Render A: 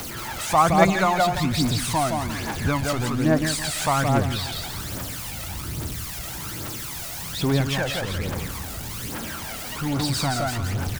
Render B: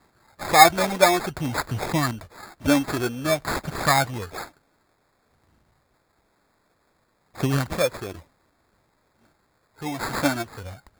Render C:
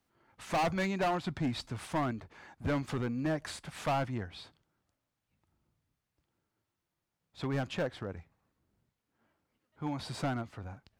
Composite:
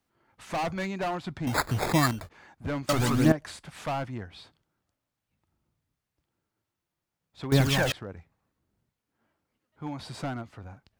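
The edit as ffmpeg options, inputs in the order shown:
-filter_complex "[0:a]asplit=2[s0][s1];[2:a]asplit=4[s2][s3][s4][s5];[s2]atrim=end=1.472[s6];[1:a]atrim=start=1.468:end=2.292[s7];[s3]atrim=start=2.288:end=2.892[s8];[s0]atrim=start=2.888:end=3.322[s9];[s4]atrim=start=3.318:end=7.522[s10];[s1]atrim=start=7.518:end=7.922[s11];[s5]atrim=start=7.918[s12];[s6][s7]acrossfade=d=0.004:c1=hsin:c2=hsin[s13];[s13][s8]acrossfade=d=0.004:c1=hsin:c2=hsin[s14];[s14][s9]acrossfade=d=0.004:c1=hsin:c2=hsin[s15];[s15][s10]acrossfade=d=0.004:c1=hsin:c2=hsin[s16];[s16][s11]acrossfade=d=0.004:c1=hsin:c2=hsin[s17];[s17][s12]acrossfade=d=0.004:c1=hsin:c2=hsin"

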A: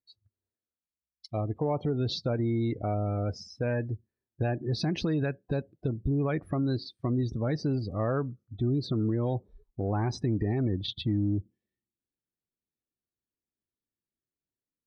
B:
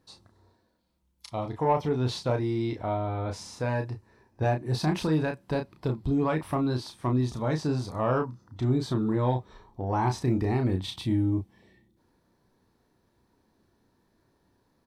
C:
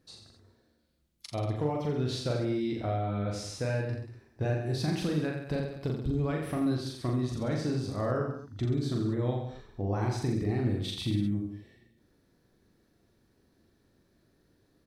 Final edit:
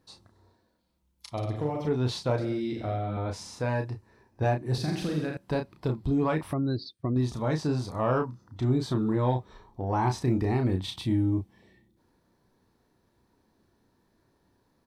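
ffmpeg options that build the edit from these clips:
-filter_complex "[2:a]asplit=3[s0][s1][s2];[1:a]asplit=5[s3][s4][s5][s6][s7];[s3]atrim=end=1.372[s8];[s0]atrim=start=1.368:end=1.872[s9];[s4]atrim=start=1.868:end=2.382[s10];[s1]atrim=start=2.378:end=3.172[s11];[s5]atrim=start=3.168:end=4.782[s12];[s2]atrim=start=4.778:end=5.372[s13];[s6]atrim=start=5.368:end=6.532[s14];[0:a]atrim=start=6.528:end=7.162[s15];[s7]atrim=start=7.158[s16];[s8][s9]acrossfade=d=0.004:c1=hsin:c2=hsin[s17];[s17][s10]acrossfade=d=0.004:c1=hsin:c2=hsin[s18];[s18][s11]acrossfade=d=0.004:c1=hsin:c2=hsin[s19];[s19][s12]acrossfade=d=0.004:c1=hsin:c2=hsin[s20];[s20][s13]acrossfade=d=0.004:c1=hsin:c2=hsin[s21];[s21][s14]acrossfade=d=0.004:c1=hsin:c2=hsin[s22];[s22][s15]acrossfade=d=0.004:c1=hsin:c2=hsin[s23];[s23][s16]acrossfade=d=0.004:c1=hsin:c2=hsin"

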